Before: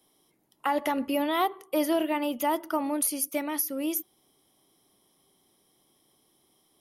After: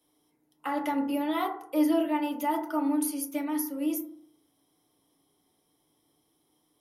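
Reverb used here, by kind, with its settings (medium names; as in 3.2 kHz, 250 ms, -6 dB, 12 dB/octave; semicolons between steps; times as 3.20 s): FDN reverb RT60 0.6 s, low-frequency decay 1.2×, high-frequency decay 0.3×, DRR 0 dB; trim -7 dB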